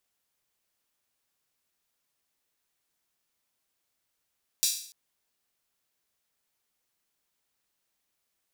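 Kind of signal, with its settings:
open synth hi-hat length 0.29 s, high-pass 4,600 Hz, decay 0.55 s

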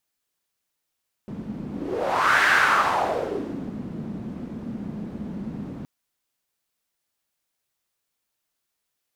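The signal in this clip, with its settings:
pass-by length 4.57 s, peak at 0:01.17, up 0.83 s, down 1.41 s, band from 210 Hz, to 1,600 Hz, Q 3.5, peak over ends 15 dB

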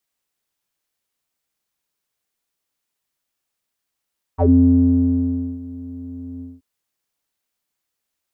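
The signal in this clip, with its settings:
subtractive voice square F2 12 dB per octave, low-pass 280 Hz, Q 8.2, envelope 2 octaves, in 0.10 s, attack 37 ms, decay 1.17 s, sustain −21.5 dB, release 0.20 s, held 2.03 s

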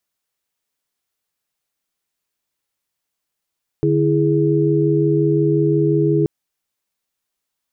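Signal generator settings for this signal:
held notes D3/E4/G#4 sine, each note −17.5 dBFS 2.43 s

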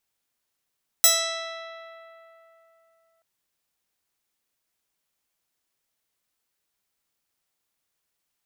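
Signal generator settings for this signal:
Karplus-Strong string E5, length 2.18 s, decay 3.35 s, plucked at 0.29, bright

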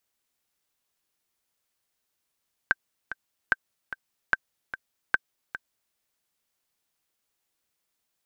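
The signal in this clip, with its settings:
click track 148 BPM, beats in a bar 2, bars 4, 1,560 Hz, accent 13 dB −7 dBFS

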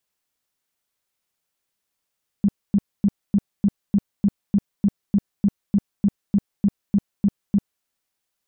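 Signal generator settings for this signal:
tone bursts 201 Hz, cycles 9, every 0.30 s, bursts 18, −13 dBFS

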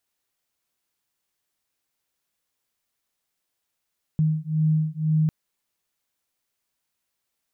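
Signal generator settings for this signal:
two tones that beat 155 Hz, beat 2 Hz, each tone −22.5 dBFS 1.10 s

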